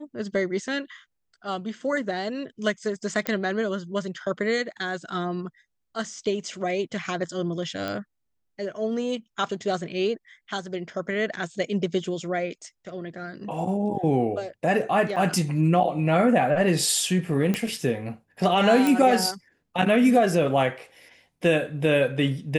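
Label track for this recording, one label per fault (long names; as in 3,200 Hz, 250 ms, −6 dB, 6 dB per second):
3.270000	3.270000	click −10 dBFS
7.880000	7.880000	click
15.160000	15.170000	drop-out 5.2 ms
17.540000	17.540000	click −12 dBFS
18.870000	18.870000	click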